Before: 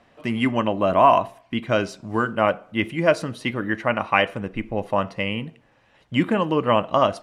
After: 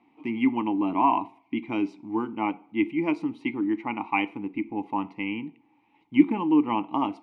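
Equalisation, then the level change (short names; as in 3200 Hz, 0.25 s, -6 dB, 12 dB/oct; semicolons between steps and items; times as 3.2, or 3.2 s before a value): vowel filter u; +7.5 dB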